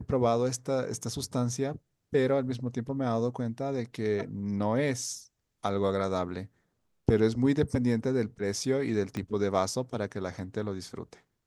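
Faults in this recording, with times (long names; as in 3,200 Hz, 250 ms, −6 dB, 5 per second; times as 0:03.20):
0:09.17: click −21 dBFS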